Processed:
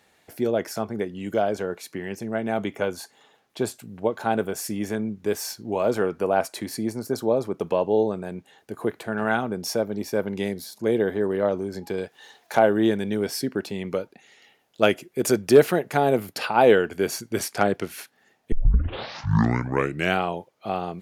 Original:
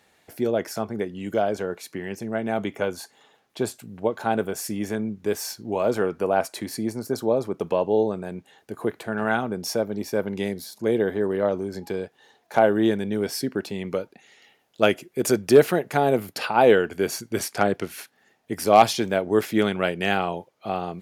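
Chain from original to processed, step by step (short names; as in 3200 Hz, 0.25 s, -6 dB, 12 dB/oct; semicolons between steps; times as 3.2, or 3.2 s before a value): 11.98–13.15 mismatched tape noise reduction encoder only; 18.52 tape start 1.70 s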